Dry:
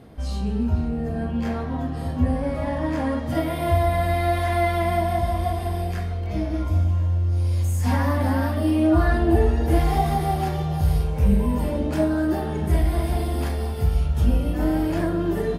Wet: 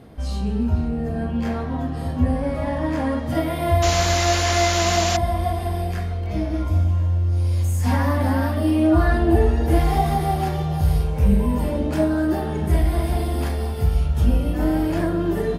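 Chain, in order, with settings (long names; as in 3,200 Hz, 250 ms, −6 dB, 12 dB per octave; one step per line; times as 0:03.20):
sound drawn into the spectrogram noise, 0:03.82–0:05.17, 270–7,400 Hz −27 dBFS
level +1.5 dB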